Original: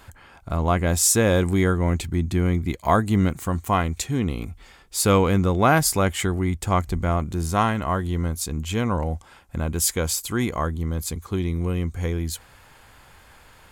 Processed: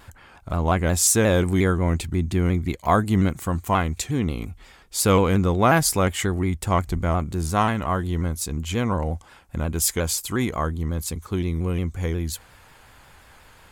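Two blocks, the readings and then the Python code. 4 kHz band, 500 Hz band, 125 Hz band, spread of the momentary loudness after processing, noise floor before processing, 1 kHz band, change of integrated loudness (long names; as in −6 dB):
0.0 dB, 0.0 dB, 0.0 dB, 10 LU, −51 dBFS, 0.0 dB, 0.0 dB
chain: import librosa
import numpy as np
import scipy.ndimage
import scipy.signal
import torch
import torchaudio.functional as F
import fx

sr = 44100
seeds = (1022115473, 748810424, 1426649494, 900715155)

y = fx.vibrato_shape(x, sr, shape='saw_down', rate_hz=5.6, depth_cents=100.0)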